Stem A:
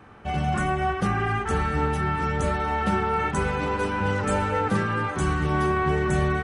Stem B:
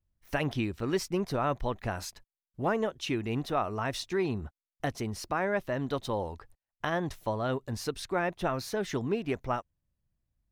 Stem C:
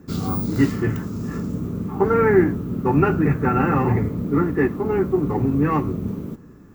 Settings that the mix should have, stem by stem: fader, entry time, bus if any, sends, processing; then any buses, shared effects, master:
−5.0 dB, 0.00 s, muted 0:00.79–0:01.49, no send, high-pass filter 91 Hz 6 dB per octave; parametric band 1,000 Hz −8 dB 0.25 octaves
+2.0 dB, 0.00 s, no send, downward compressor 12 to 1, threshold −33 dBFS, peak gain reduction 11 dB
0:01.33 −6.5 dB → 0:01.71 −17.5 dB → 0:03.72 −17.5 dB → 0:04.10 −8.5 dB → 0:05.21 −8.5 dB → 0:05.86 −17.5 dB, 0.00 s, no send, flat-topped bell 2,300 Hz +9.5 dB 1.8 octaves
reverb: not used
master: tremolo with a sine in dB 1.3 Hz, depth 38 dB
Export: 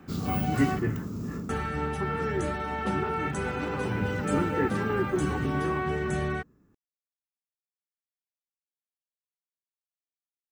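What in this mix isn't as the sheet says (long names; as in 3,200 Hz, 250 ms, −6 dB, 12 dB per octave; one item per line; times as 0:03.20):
stem B: muted
stem C: missing flat-topped bell 2,300 Hz +9.5 dB 1.8 octaves
master: missing tremolo with a sine in dB 1.3 Hz, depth 38 dB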